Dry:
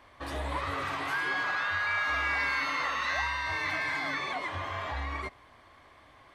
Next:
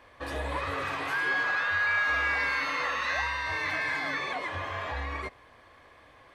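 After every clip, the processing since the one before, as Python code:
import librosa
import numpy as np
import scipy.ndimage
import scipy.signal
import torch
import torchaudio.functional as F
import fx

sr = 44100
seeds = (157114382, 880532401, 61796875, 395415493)

y = fx.small_body(x, sr, hz=(490.0, 1700.0, 2500.0), ring_ms=35, db=8)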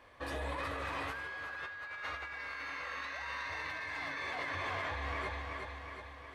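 y = fx.echo_feedback(x, sr, ms=365, feedback_pct=58, wet_db=-5.0)
y = fx.over_compress(y, sr, threshold_db=-33.0, ratio=-1.0)
y = F.gain(torch.from_numpy(y), -7.5).numpy()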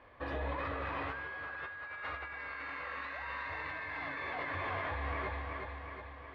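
y = fx.air_absorb(x, sr, metres=340.0)
y = F.gain(torch.from_numpy(y), 2.5).numpy()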